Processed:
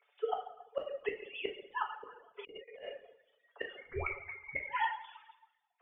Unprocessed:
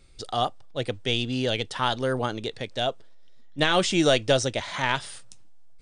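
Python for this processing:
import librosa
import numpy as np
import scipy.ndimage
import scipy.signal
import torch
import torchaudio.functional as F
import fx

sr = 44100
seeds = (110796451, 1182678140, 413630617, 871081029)

y = fx.sine_speech(x, sr)
y = scipy.signal.sosfilt(scipy.signal.butter(16, 430.0, 'highpass', fs=sr, output='sos'), y)
y = fx.air_absorb(y, sr, metres=280.0)
y = y + 0.81 * np.pad(y, (int(7.0 * sr / 1000.0), 0))[:len(y)]
y = fx.gate_flip(y, sr, shuts_db=-22.0, range_db=-34)
y = fx.freq_invert(y, sr, carrier_hz=2700, at=(3.77, 4.61))
y = fx.rev_plate(y, sr, seeds[0], rt60_s=1.1, hf_ratio=0.95, predelay_ms=0, drr_db=-1.5)
y = fx.over_compress(y, sr, threshold_db=-47.0, ratio=-1.0, at=(2.37, 2.83), fade=0.02)
y = fx.dereverb_blind(y, sr, rt60_s=0.71)
y = fx.band_squash(y, sr, depth_pct=40, at=(0.79, 1.29))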